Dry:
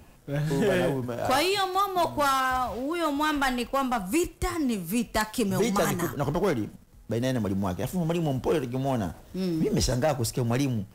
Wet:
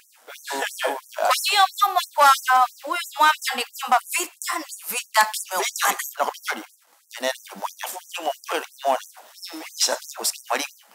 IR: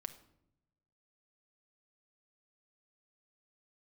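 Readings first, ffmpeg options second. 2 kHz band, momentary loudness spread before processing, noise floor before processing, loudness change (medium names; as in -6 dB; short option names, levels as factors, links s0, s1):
+7.5 dB, 6 LU, -52 dBFS, +4.5 dB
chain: -af "lowshelf=f=530:t=q:w=1.5:g=-12.5,afftfilt=real='re*gte(b*sr/1024,200*pow(5700/200,0.5+0.5*sin(2*PI*3*pts/sr)))':imag='im*gte(b*sr/1024,200*pow(5700/200,0.5+0.5*sin(2*PI*3*pts/sr)))':win_size=1024:overlap=0.75,volume=2.82"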